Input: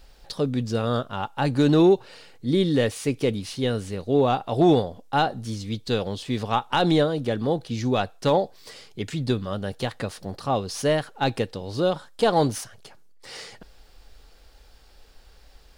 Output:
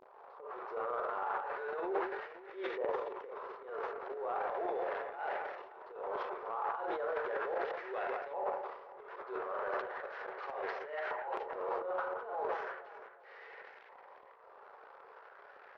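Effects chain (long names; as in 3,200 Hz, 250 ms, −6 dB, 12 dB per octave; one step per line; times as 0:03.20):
linear delta modulator 32 kbit/s, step −27 dBFS
noise gate with hold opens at −19 dBFS
downward compressor 12 to 1, threshold −34 dBFS, peak gain reduction 20.5 dB
on a send at −3 dB: convolution reverb, pre-delay 17 ms
on the sum: volume swells 172 ms
auto-filter low-pass saw up 0.36 Hz 1,000–2,000 Hz
linear-phase brick-wall high-pass 360 Hz
high-shelf EQ 2,600 Hz −10.5 dB
brickwall limiter −30.5 dBFS, peak gain reduction 10 dB
delay that swaps between a low-pass and a high-pass 175 ms, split 2,500 Hz, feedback 63%, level −10 dB
transient designer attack −7 dB, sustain +12 dB
level +2.5 dB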